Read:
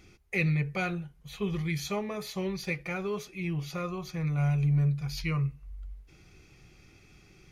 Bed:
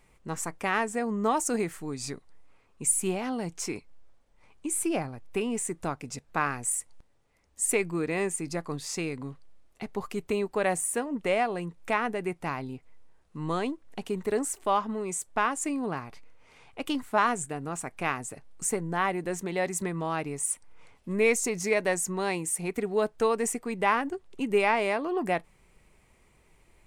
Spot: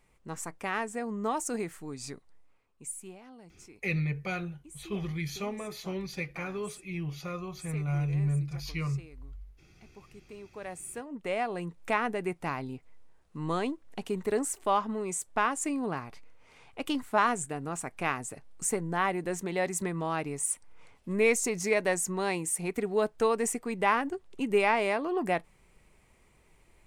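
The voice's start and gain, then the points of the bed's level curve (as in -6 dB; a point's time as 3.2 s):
3.50 s, -3.0 dB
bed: 2.33 s -5 dB
3.24 s -19.5 dB
10.27 s -19.5 dB
11.69 s -1 dB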